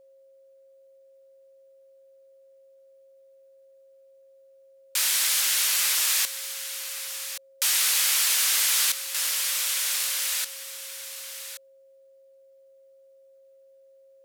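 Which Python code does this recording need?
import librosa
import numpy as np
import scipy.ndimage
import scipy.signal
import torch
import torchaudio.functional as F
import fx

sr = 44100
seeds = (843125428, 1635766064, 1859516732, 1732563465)

y = fx.fix_declip(x, sr, threshold_db=-15.0)
y = fx.notch(y, sr, hz=540.0, q=30.0)
y = fx.fix_echo_inverse(y, sr, delay_ms=1125, level_db=-11.0)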